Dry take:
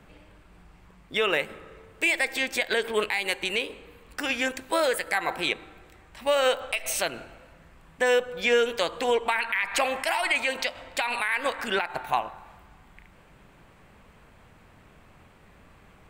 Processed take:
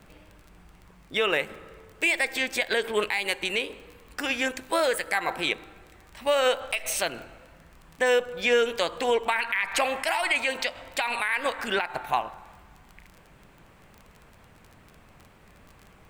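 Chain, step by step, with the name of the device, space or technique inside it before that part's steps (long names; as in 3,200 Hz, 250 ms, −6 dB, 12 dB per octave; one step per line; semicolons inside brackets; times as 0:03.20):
vinyl LP (tape wow and flutter 20 cents; surface crackle 22 per second −37 dBFS; pink noise bed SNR 40 dB)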